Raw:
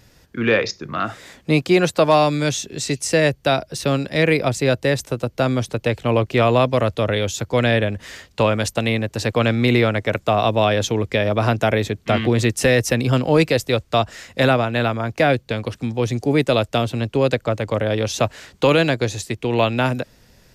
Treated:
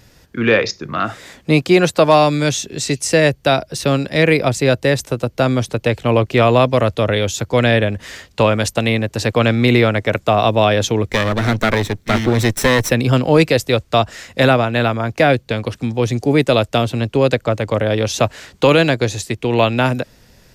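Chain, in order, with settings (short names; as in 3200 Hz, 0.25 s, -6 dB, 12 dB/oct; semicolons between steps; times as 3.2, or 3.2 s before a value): 11.07–12.9 minimum comb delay 0.53 ms; gain +3.5 dB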